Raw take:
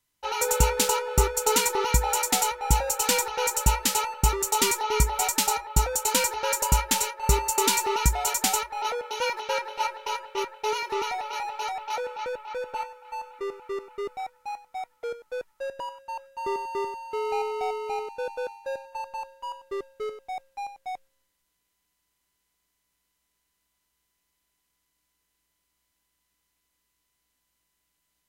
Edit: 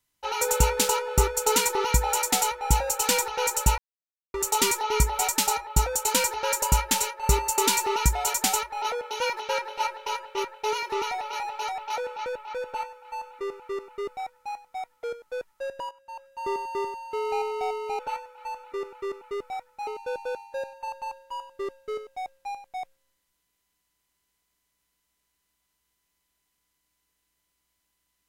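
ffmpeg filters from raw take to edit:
-filter_complex "[0:a]asplit=6[s0][s1][s2][s3][s4][s5];[s0]atrim=end=3.78,asetpts=PTS-STARTPTS,afade=t=out:st=3.776:d=0.004:c=hsin[s6];[s1]atrim=start=3.78:end=4.34,asetpts=PTS-STARTPTS,volume=0[s7];[s2]atrim=start=4.34:end=15.91,asetpts=PTS-STARTPTS,afade=t=in:d=0.004:c=hsin,afade=t=out:st=11.566:d=0.004:c=hsin:silence=0.251189[s8];[s3]atrim=start=15.91:end=17.992,asetpts=PTS-STARTPTS,afade=t=in:d=0.59:silence=0.251189[s9];[s4]atrim=start=12.658:end=14.542[s10];[s5]atrim=start=17.988[s11];[s6][s7][s8][s9]concat=n=4:v=0:a=1[s12];[s12][s10]acrossfade=d=0.004:c1=hsin:c2=hsin[s13];[s13][s11]acrossfade=d=0.004:c1=hsin:c2=hsin"

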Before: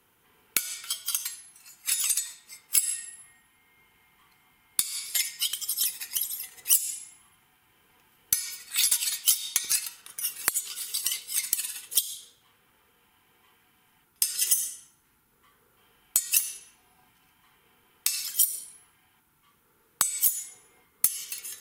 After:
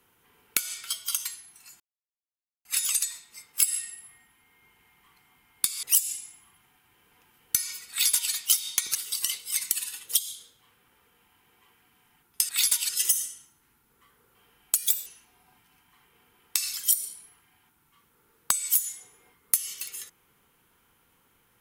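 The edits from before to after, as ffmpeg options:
-filter_complex "[0:a]asplit=8[s0][s1][s2][s3][s4][s5][s6][s7];[s0]atrim=end=1.8,asetpts=PTS-STARTPTS,afade=t=out:st=1.796:d=0.004:c=hsin,apad=pad_dur=0.85[s8];[s1]atrim=start=1.8:end=4.982,asetpts=PTS-STARTPTS,afade=t=in:d=0.004:c=hsin[s9];[s2]atrim=start=6.608:end=9.732[s10];[s3]atrim=start=10.768:end=14.312[s11];[s4]atrim=start=8.688:end=9.092[s12];[s5]atrim=start=14.308:end=16.174[s13];[s6]atrim=start=16.17:end=16.57,asetpts=PTS-STARTPTS,asetrate=56448,aresample=44100,atrim=end_sample=13781,asetpts=PTS-STARTPTS[s14];[s7]atrim=start=16.566[s15];[s8][s9]concat=n=2:v=0:a=1[s16];[s16][s10]acrossfade=d=0.004:c1=hsin:c2=hsin[s17];[s17][s11]acrossfade=d=0.004:c1=hsin:c2=hsin[s18];[s18][s12]acrossfade=d=0.004:c1=hsin:c2=hsin[s19];[s19][s13]acrossfade=d=0.004:c1=hsin:c2=hsin[s20];[s20][s14]acrossfade=d=0.004:c1=hsin:c2=hsin[s21];[s21][s15]acrossfade=d=0.004:c1=hsin:c2=hsin"

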